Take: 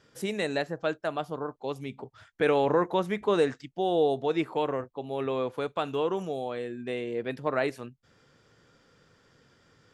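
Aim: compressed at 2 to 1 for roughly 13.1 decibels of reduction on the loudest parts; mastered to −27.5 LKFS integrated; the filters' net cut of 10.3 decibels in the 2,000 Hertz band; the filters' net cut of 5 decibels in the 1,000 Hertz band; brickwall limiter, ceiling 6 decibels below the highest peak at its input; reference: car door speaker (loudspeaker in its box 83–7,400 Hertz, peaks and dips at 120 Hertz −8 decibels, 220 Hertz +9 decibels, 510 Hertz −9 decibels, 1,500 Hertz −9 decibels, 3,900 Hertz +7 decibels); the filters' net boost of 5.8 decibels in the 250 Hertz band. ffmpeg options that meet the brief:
ffmpeg -i in.wav -af "equalizer=frequency=250:width_type=o:gain=5.5,equalizer=frequency=1000:width_type=o:gain=-3.5,equalizer=frequency=2000:width_type=o:gain=-9,acompressor=threshold=-44dB:ratio=2,alimiter=level_in=7.5dB:limit=-24dB:level=0:latency=1,volume=-7.5dB,highpass=83,equalizer=frequency=120:width_type=q:width=4:gain=-8,equalizer=frequency=220:width_type=q:width=4:gain=9,equalizer=frequency=510:width_type=q:width=4:gain=-9,equalizer=frequency=1500:width_type=q:width=4:gain=-9,equalizer=frequency=3900:width_type=q:width=4:gain=7,lowpass=frequency=7400:width=0.5412,lowpass=frequency=7400:width=1.3066,volume=14.5dB" out.wav

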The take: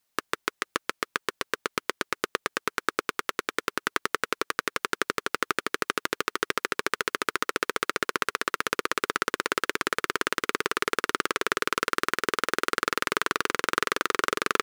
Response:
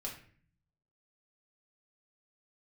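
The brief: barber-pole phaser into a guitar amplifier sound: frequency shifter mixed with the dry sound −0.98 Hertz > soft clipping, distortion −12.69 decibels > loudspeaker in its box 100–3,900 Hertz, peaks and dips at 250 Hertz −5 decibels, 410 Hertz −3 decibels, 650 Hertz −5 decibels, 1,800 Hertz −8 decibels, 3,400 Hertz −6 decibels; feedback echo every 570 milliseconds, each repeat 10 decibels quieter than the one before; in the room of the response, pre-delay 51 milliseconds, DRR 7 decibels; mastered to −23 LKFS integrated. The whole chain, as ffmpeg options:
-filter_complex "[0:a]aecho=1:1:570|1140|1710|2280:0.316|0.101|0.0324|0.0104,asplit=2[link_01][link_02];[1:a]atrim=start_sample=2205,adelay=51[link_03];[link_02][link_03]afir=irnorm=-1:irlink=0,volume=-6.5dB[link_04];[link_01][link_04]amix=inputs=2:normalize=0,asplit=2[link_05][link_06];[link_06]afreqshift=-0.98[link_07];[link_05][link_07]amix=inputs=2:normalize=1,asoftclip=threshold=-16dB,highpass=100,equalizer=frequency=250:width_type=q:width=4:gain=-5,equalizer=frequency=410:width_type=q:width=4:gain=-3,equalizer=frequency=650:width_type=q:width=4:gain=-5,equalizer=frequency=1800:width_type=q:width=4:gain=-8,equalizer=frequency=3400:width_type=q:width=4:gain=-6,lowpass=frequency=3900:width=0.5412,lowpass=frequency=3900:width=1.3066,volume=12.5dB"

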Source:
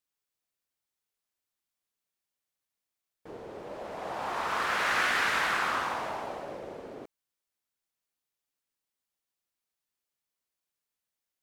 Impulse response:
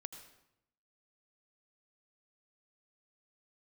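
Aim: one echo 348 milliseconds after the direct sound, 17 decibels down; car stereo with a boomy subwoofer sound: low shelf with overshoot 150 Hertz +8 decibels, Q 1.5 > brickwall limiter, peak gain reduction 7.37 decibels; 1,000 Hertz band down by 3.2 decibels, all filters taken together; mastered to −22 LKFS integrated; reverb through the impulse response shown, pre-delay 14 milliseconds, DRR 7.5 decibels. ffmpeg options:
-filter_complex "[0:a]equalizer=frequency=1000:width_type=o:gain=-4,aecho=1:1:348:0.141,asplit=2[link_01][link_02];[1:a]atrim=start_sample=2205,adelay=14[link_03];[link_02][link_03]afir=irnorm=-1:irlink=0,volume=-3.5dB[link_04];[link_01][link_04]amix=inputs=2:normalize=0,lowshelf=frequency=150:width_type=q:width=1.5:gain=8,volume=12.5dB,alimiter=limit=-11dB:level=0:latency=1"

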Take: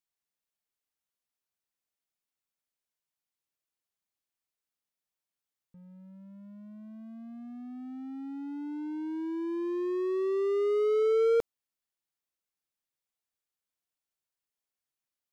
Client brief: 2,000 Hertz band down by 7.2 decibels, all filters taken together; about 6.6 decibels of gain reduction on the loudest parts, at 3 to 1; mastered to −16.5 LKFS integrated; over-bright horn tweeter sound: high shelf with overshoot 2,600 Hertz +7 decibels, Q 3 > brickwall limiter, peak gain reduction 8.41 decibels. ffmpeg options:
ffmpeg -i in.wav -af "equalizer=frequency=2000:width_type=o:gain=-5.5,acompressor=threshold=-32dB:ratio=3,highshelf=frequency=2600:width_type=q:width=3:gain=7,volume=25.5dB,alimiter=limit=-9.5dB:level=0:latency=1" out.wav

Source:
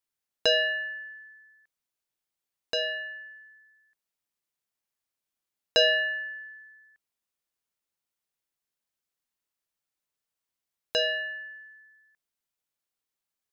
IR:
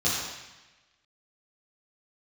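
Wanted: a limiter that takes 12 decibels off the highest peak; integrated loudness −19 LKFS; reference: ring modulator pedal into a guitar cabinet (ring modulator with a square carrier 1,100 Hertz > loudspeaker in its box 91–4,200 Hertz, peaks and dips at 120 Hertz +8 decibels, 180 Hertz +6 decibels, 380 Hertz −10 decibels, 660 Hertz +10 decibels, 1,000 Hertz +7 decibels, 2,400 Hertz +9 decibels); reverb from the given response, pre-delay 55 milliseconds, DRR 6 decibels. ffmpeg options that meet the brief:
-filter_complex "[0:a]alimiter=level_in=2.5dB:limit=-24dB:level=0:latency=1,volume=-2.5dB,asplit=2[link_01][link_02];[1:a]atrim=start_sample=2205,adelay=55[link_03];[link_02][link_03]afir=irnorm=-1:irlink=0,volume=-18dB[link_04];[link_01][link_04]amix=inputs=2:normalize=0,aeval=exprs='val(0)*sgn(sin(2*PI*1100*n/s))':channel_layout=same,highpass=91,equalizer=frequency=120:width_type=q:width=4:gain=8,equalizer=frequency=180:width_type=q:width=4:gain=6,equalizer=frequency=380:width_type=q:width=4:gain=-10,equalizer=frequency=660:width_type=q:width=4:gain=10,equalizer=frequency=1000:width_type=q:width=4:gain=7,equalizer=frequency=2400:width_type=q:width=4:gain=9,lowpass=frequency=4200:width=0.5412,lowpass=frequency=4200:width=1.3066,volume=8.5dB"

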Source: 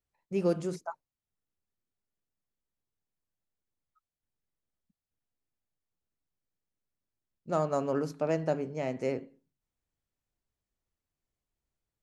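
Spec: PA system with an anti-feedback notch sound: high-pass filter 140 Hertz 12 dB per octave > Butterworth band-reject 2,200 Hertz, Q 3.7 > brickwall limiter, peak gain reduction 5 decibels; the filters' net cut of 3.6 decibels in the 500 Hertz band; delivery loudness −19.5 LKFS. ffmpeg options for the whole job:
ffmpeg -i in.wav -af "highpass=140,asuperstop=centerf=2200:order=8:qfactor=3.7,equalizer=frequency=500:width_type=o:gain=-4.5,volume=17.5dB,alimiter=limit=-6dB:level=0:latency=1" out.wav

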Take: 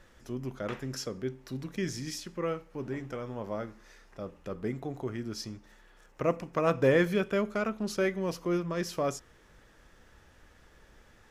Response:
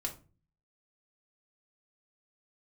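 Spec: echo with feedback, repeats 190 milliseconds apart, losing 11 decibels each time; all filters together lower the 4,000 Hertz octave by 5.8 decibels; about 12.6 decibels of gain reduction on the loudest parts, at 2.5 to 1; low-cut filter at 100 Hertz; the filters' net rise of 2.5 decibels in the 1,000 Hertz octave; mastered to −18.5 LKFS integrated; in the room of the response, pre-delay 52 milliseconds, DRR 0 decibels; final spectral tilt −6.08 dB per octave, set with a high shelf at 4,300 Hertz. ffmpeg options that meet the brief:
-filter_complex "[0:a]highpass=100,equalizer=frequency=1000:width_type=o:gain=4,equalizer=frequency=4000:width_type=o:gain=-4.5,highshelf=frequency=4300:gain=-5.5,acompressor=threshold=-39dB:ratio=2.5,aecho=1:1:190|380|570:0.282|0.0789|0.0221,asplit=2[link_01][link_02];[1:a]atrim=start_sample=2205,adelay=52[link_03];[link_02][link_03]afir=irnorm=-1:irlink=0,volume=-1dB[link_04];[link_01][link_04]amix=inputs=2:normalize=0,volume=19dB"

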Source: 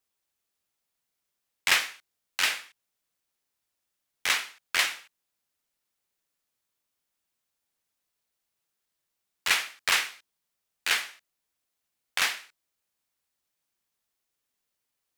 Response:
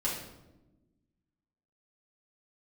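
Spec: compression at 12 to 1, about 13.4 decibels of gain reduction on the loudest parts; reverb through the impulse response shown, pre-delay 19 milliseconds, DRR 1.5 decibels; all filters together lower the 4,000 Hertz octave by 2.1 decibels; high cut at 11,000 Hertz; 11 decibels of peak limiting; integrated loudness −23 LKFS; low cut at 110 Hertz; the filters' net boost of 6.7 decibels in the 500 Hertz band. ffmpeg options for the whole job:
-filter_complex "[0:a]highpass=110,lowpass=11000,equalizer=frequency=500:width_type=o:gain=8.5,equalizer=frequency=4000:width_type=o:gain=-3,acompressor=threshold=-32dB:ratio=12,alimiter=level_in=1dB:limit=-24dB:level=0:latency=1,volume=-1dB,asplit=2[link_01][link_02];[1:a]atrim=start_sample=2205,adelay=19[link_03];[link_02][link_03]afir=irnorm=-1:irlink=0,volume=-7.5dB[link_04];[link_01][link_04]amix=inputs=2:normalize=0,volume=17dB"

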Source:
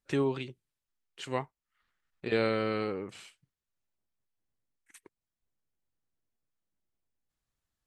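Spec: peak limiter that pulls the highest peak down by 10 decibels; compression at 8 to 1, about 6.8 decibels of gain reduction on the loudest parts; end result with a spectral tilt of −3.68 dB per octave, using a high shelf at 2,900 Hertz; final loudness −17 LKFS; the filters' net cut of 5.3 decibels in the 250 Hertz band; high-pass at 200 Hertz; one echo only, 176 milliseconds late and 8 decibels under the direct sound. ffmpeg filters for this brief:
ffmpeg -i in.wav -af "highpass=200,equalizer=frequency=250:width_type=o:gain=-5,highshelf=frequency=2900:gain=-8.5,acompressor=threshold=-32dB:ratio=8,alimiter=level_in=8dB:limit=-24dB:level=0:latency=1,volume=-8dB,aecho=1:1:176:0.398,volume=27dB" out.wav

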